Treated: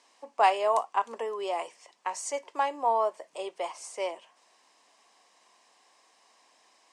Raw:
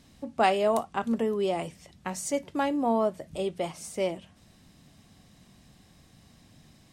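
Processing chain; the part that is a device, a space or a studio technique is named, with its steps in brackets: phone speaker on a table (cabinet simulation 470–8900 Hz, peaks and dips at 580 Hz -3 dB, 1 kHz +10 dB, 1.4 kHz -4 dB, 3.7 kHz -6 dB)

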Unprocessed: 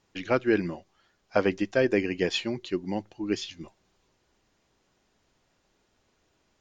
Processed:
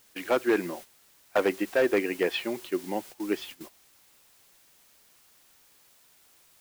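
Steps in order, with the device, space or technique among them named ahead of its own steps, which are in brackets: aircraft radio (band-pass 340–2500 Hz; hard clipper -20 dBFS, distortion -13 dB; white noise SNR 17 dB; gate -45 dBFS, range -12 dB); trim +3 dB

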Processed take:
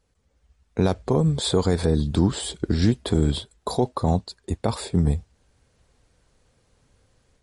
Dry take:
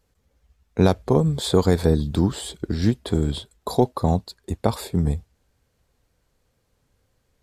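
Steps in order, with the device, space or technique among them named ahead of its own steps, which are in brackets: low-bitrate web radio (level rider gain up to 7 dB; peak limiter -7 dBFS, peak gain reduction 5.5 dB; trim -1 dB; MP3 48 kbps 48 kHz)

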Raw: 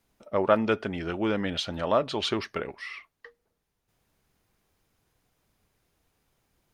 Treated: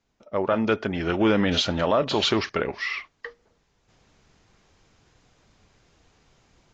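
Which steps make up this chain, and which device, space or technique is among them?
low-bitrate web radio (level rider gain up to 14 dB; peak limiter -9 dBFS, peak gain reduction 7.5 dB; trim -1.5 dB; AAC 32 kbps 16 kHz)

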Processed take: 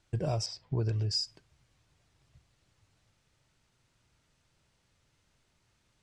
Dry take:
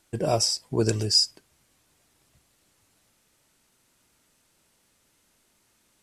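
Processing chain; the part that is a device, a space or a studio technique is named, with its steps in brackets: jukebox (low-pass 5.8 kHz 12 dB/octave; resonant low shelf 170 Hz +8 dB, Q 1.5; compression 5:1, threshold -23 dBFS, peak gain reduction 8.5 dB); 0.46–1.11 s: low-pass 3.6 kHz 12 dB/octave; trim -5 dB

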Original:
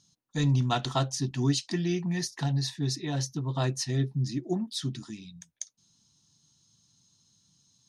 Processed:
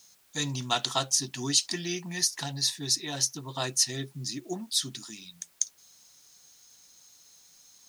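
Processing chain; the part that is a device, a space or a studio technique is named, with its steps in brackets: turntable without a phono preamp (RIAA curve recording; white noise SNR 31 dB)

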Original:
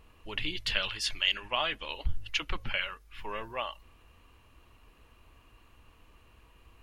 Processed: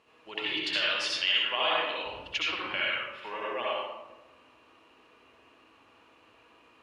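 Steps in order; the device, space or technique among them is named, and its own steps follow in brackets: supermarket ceiling speaker (band-pass 300–6800 Hz; reverberation RT60 1.1 s, pre-delay 61 ms, DRR -6 dB); trim -2 dB

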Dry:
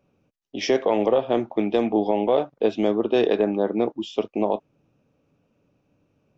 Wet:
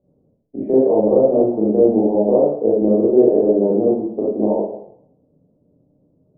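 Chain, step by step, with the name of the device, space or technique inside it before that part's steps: next room (low-pass 630 Hz 24 dB/octave; reverberation RT60 0.70 s, pre-delay 26 ms, DRR -7.5 dB)

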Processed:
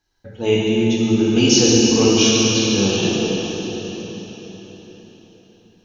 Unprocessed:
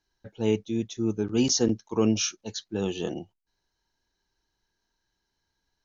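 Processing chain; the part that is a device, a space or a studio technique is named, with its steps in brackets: dynamic bell 2.9 kHz, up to +8 dB, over -47 dBFS, Q 1.4; cathedral (reverberation RT60 4.5 s, pre-delay 5 ms, DRR -7 dB); trim +3.5 dB

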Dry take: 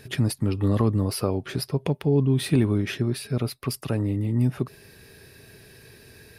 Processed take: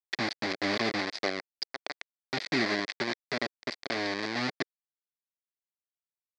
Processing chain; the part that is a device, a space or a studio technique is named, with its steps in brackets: 1.49–2.32 s: high-pass 540 Hz -> 1.4 kHz 6 dB/octave; hand-held game console (bit crusher 4-bit; cabinet simulation 430–4800 Hz, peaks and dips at 470 Hz -7 dB, 930 Hz -8 dB, 1.3 kHz -7 dB, 2 kHz +6 dB, 2.9 kHz -8 dB, 4.6 kHz +7 dB)

